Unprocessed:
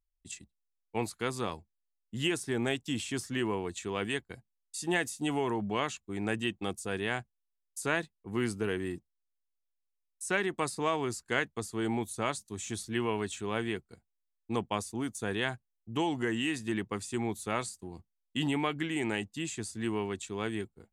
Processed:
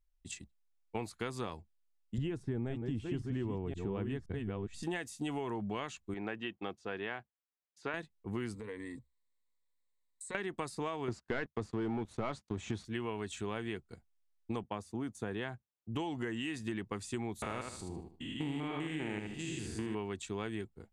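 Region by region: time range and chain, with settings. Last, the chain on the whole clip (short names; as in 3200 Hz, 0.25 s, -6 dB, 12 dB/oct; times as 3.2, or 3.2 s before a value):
2.18–4.83 reverse delay 0.52 s, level -6.5 dB + tilt -4 dB/oct
6.14–7.94 HPF 440 Hz 6 dB/oct + air absorption 250 m
8.54–10.35 ripple EQ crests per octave 1, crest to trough 15 dB + compressor, threshold -42 dBFS
11.08–12.85 HPF 62 Hz + sample leveller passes 3 + tape spacing loss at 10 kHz 21 dB
14.63–15.95 HPF 79 Hz + high shelf 2200 Hz -8.5 dB
17.42–19.95 stepped spectrum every 0.2 s + feedback echo 76 ms, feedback 28%, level -6 dB
whole clip: low shelf 62 Hz +7.5 dB; compressor, threshold -36 dBFS; high shelf 8100 Hz -8.5 dB; gain +1.5 dB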